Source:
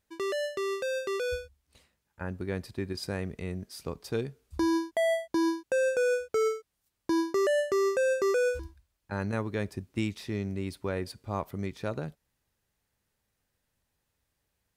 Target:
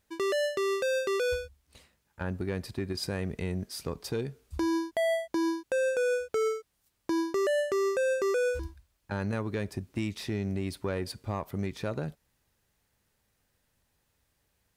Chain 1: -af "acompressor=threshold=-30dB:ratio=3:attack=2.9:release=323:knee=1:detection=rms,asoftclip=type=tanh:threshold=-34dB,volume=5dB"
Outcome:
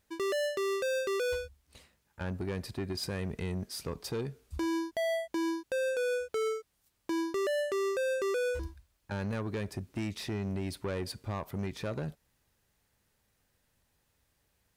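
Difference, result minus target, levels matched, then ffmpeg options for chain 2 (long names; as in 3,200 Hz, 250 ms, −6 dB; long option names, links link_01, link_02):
soft clipping: distortion +10 dB
-af "acompressor=threshold=-30dB:ratio=3:attack=2.9:release=323:knee=1:detection=rms,asoftclip=type=tanh:threshold=-26.5dB,volume=5dB"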